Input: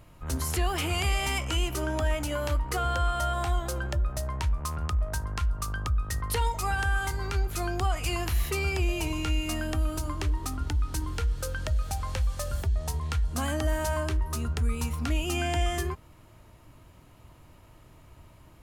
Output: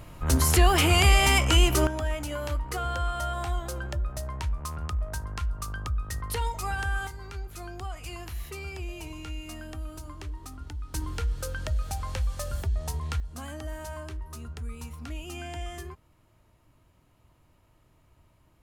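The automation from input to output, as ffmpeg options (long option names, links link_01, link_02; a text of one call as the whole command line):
ffmpeg -i in.wav -af "asetnsamples=nb_out_samples=441:pad=0,asendcmd='1.87 volume volume -2.5dB;7.07 volume volume -9.5dB;10.94 volume volume -1dB;13.2 volume volume -9.5dB',volume=8dB" out.wav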